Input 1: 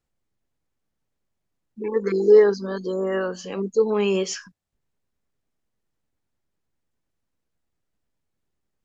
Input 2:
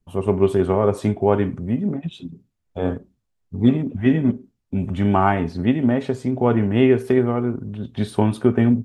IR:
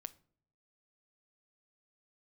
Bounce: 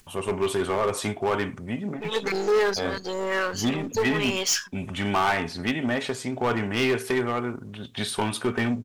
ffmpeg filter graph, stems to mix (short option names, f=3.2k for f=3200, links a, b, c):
-filter_complex "[0:a]aeval=exprs='if(lt(val(0),0),0.447*val(0),val(0))':c=same,adelay=200,volume=1dB,asplit=2[a][b];[b]volume=-9dB[c];[1:a]acontrast=53,volume=-8dB,asplit=3[d][e][f];[e]volume=-9.5dB[g];[f]apad=whole_len=398840[h];[a][h]sidechaincompress=threshold=-25dB:ratio=3:attack=28:release=317[i];[2:a]atrim=start_sample=2205[j];[c][g]amix=inputs=2:normalize=0[k];[k][j]afir=irnorm=-1:irlink=0[l];[i][d][l]amix=inputs=3:normalize=0,tiltshelf=f=740:g=-10,acompressor=mode=upward:threshold=-43dB:ratio=2.5,asoftclip=type=hard:threshold=-17.5dB"